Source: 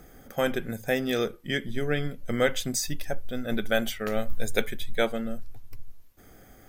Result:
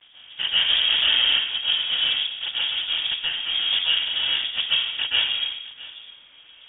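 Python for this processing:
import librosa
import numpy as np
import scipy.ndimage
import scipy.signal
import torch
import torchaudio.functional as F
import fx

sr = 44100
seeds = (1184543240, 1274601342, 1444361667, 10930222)

y = fx.highpass(x, sr, hz=870.0, slope=24, at=(2.05, 2.87))
y = fx.rider(y, sr, range_db=4, speed_s=0.5)
y = fx.sample_hold(y, sr, seeds[0], rate_hz=1200.0, jitter_pct=20)
y = fx.noise_vocoder(y, sr, seeds[1], bands=16)
y = fx.dmg_crackle(y, sr, seeds[2], per_s=390.0, level_db=-41.0)
y = fx.air_absorb(y, sr, metres=420.0)
y = y + 10.0 ** (-18.5 / 20.0) * np.pad(y, (int(662 * sr / 1000.0), 0))[:len(y)]
y = fx.rev_plate(y, sr, seeds[3], rt60_s=0.74, hf_ratio=0.8, predelay_ms=115, drr_db=-7.0)
y = fx.freq_invert(y, sr, carrier_hz=3500)
y = fx.env_flatten(y, sr, amount_pct=70, at=(0.68, 1.37), fade=0.02)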